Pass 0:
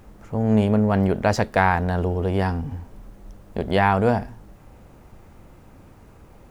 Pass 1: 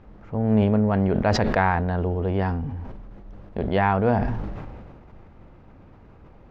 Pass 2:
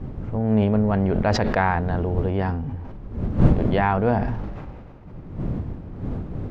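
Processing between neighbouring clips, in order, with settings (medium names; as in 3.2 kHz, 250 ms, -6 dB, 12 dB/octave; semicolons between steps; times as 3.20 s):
distance through air 240 m; decay stretcher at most 31 dB/s; trim -1.5 dB
wind noise 170 Hz -27 dBFS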